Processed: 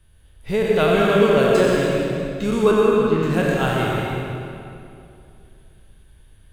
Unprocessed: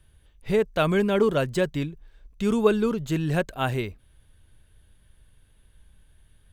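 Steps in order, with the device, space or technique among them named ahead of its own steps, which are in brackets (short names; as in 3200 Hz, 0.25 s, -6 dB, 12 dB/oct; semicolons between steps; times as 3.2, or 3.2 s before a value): spectral trails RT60 0.79 s; 2.71–3.23 air absorption 270 m; stairwell (reverb RT60 2.6 s, pre-delay 86 ms, DRR -2.5 dB)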